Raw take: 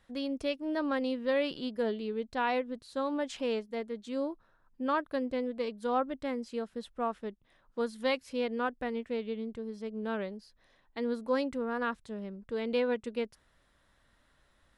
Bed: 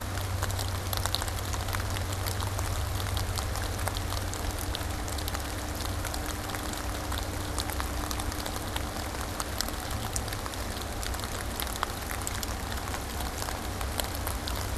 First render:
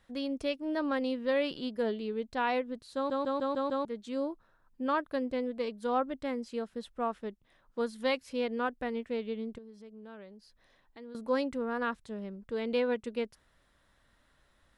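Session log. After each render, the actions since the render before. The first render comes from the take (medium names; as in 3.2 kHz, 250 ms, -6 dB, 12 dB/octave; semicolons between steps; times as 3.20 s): 2.95 s: stutter in place 0.15 s, 6 plays; 9.58–11.15 s: compression 2:1, threshold -56 dBFS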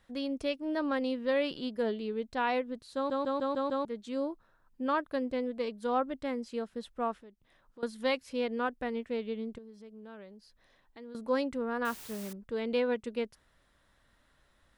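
7.16–7.83 s: compression 2.5:1, threshold -56 dBFS; 11.85–12.33 s: word length cut 8-bit, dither triangular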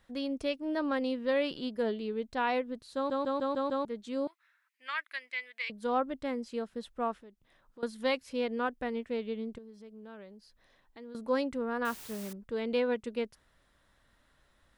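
4.27–5.70 s: resonant high-pass 2.1 kHz, resonance Q 5.3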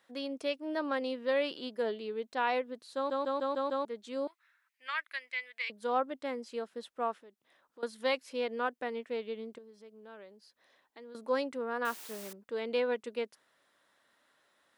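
high-pass 340 Hz 12 dB/octave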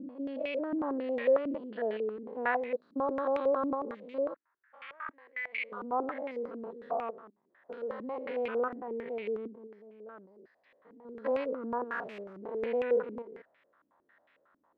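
spectrogram pixelated in time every 200 ms; step-sequenced low-pass 11 Hz 280–2400 Hz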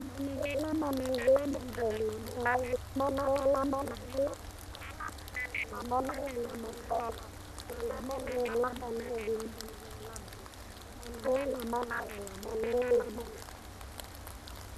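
add bed -13.5 dB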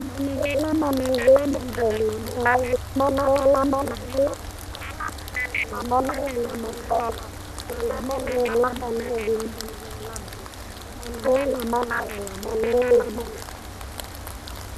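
trim +10.5 dB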